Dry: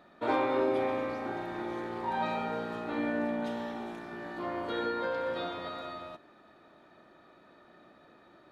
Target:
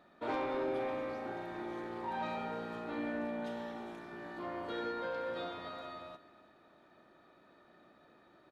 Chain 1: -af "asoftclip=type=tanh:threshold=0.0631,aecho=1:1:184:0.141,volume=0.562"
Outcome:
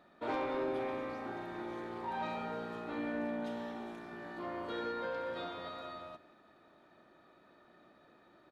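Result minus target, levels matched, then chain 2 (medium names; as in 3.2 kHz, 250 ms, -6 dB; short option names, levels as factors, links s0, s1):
echo 131 ms early
-af "asoftclip=type=tanh:threshold=0.0631,aecho=1:1:315:0.141,volume=0.562"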